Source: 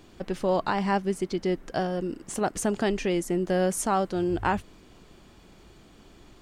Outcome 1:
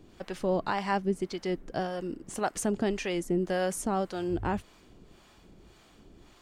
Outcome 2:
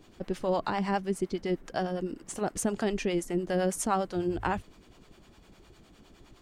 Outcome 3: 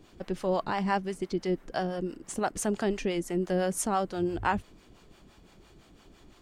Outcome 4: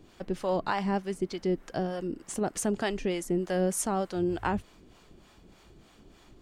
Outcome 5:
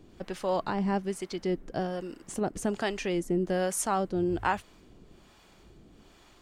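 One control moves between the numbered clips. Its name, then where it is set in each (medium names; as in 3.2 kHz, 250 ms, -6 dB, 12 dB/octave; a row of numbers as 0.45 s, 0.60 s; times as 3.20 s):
harmonic tremolo, rate: 1.8 Hz, 9.8 Hz, 5.9 Hz, 3.3 Hz, 1.2 Hz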